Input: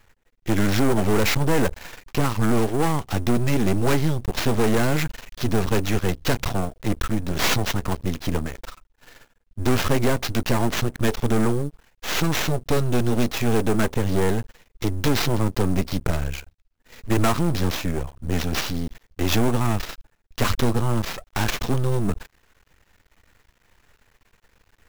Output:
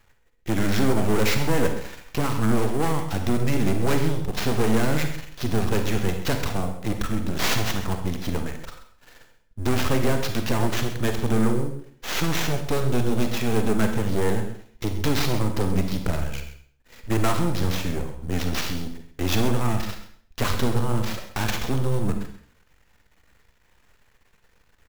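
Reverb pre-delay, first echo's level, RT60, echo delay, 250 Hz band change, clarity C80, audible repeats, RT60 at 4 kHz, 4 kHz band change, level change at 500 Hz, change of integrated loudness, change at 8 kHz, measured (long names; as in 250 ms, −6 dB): 38 ms, −13.5 dB, 0.55 s, 132 ms, −1.5 dB, 9.5 dB, 1, 0.50 s, −2.0 dB, −2.0 dB, −2.0 dB, −2.0 dB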